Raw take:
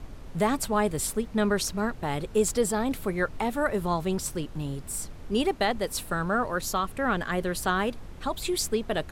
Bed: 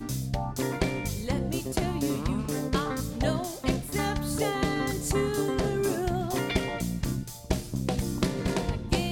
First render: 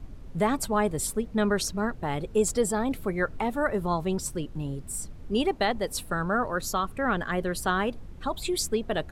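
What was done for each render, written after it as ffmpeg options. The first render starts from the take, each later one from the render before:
-af "afftdn=nr=8:nf=-42"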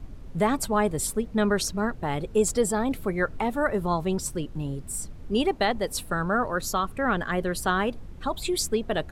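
-af "volume=1.5dB"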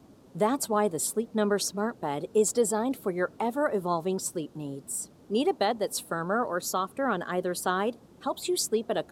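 -af "highpass=240,equalizer=f=2.1k:w=1.1:g=-8.5"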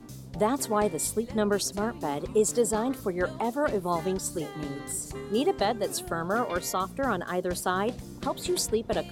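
-filter_complex "[1:a]volume=-12dB[a];[0:a][a]amix=inputs=2:normalize=0"

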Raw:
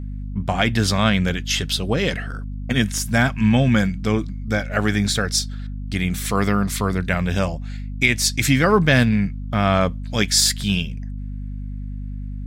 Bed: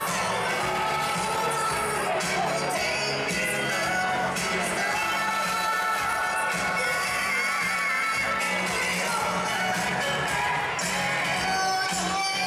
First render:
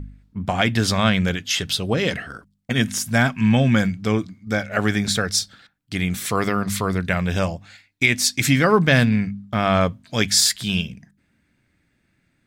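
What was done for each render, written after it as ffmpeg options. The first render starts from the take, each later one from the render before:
-af "bandreject=f=50:t=h:w=4,bandreject=f=100:t=h:w=4,bandreject=f=150:t=h:w=4,bandreject=f=200:t=h:w=4,bandreject=f=250:t=h:w=4"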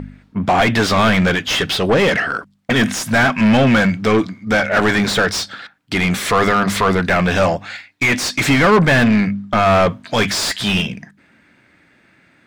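-filter_complex "[0:a]asplit=2[a][b];[b]highpass=f=720:p=1,volume=27dB,asoftclip=type=tanh:threshold=-4dB[c];[a][c]amix=inputs=2:normalize=0,lowpass=f=1.6k:p=1,volume=-6dB"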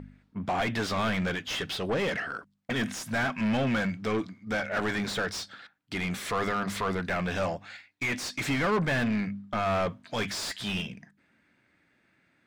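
-af "volume=-14.5dB"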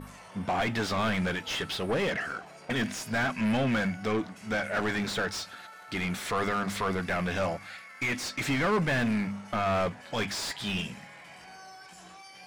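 -filter_complex "[1:a]volume=-23dB[a];[0:a][a]amix=inputs=2:normalize=0"

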